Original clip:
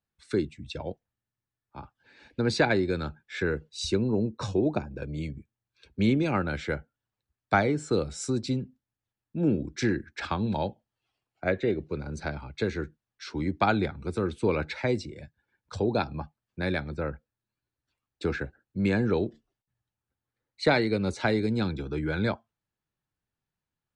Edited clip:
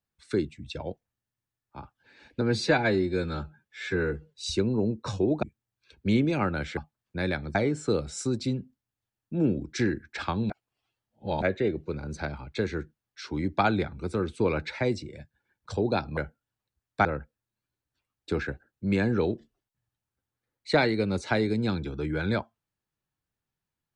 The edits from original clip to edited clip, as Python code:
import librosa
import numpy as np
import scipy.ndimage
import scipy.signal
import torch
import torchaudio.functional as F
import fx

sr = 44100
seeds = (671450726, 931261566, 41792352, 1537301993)

y = fx.edit(x, sr, fx.stretch_span(start_s=2.41, length_s=1.3, factor=1.5),
    fx.cut(start_s=4.78, length_s=0.58),
    fx.swap(start_s=6.7, length_s=0.88, other_s=16.2, other_length_s=0.78),
    fx.reverse_span(start_s=10.53, length_s=0.92), tone=tone)